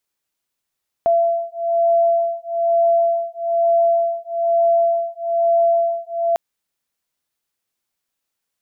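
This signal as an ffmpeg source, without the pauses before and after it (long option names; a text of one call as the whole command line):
ffmpeg -f lavfi -i "aevalsrc='0.133*(sin(2*PI*676*t)+sin(2*PI*677.1*t))':duration=5.3:sample_rate=44100" out.wav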